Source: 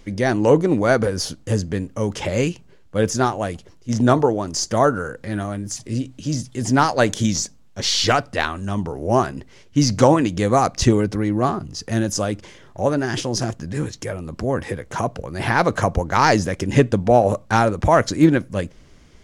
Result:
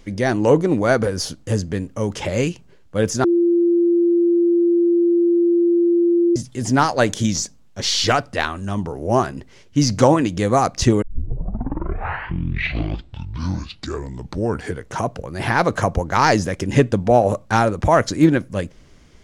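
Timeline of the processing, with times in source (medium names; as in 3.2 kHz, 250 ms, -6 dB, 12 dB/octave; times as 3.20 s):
3.24–6.36 s: bleep 344 Hz -12.5 dBFS
11.02 s: tape start 4.05 s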